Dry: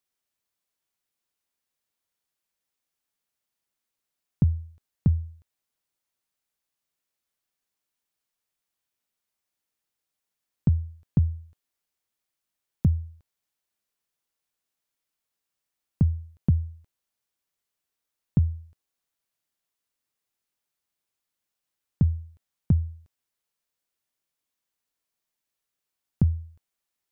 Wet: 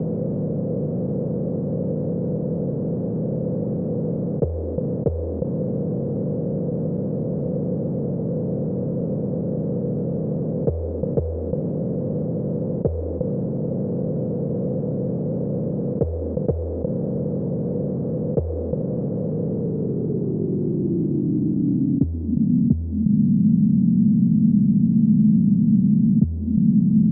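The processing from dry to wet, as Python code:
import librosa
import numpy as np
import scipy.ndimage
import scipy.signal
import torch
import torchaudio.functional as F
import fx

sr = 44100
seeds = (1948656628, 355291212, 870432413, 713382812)

y = fx.bin_compress(x, sr, power=0.2)
y = scipy.signal.sosfilt(scipy.signal.butter(4, 140.0, 'highpass', fs=sr, output='sos'), y)
y = fx.leveller(y, sr, passes=5)
y = fx.filter_sweep_lowpass(y, sr, from_hz=500.0, to_hz=220.0, start_s=19.26, end_s=22.99, q=7.7)
y = y * librosa.db_to_amplitude(-7.0)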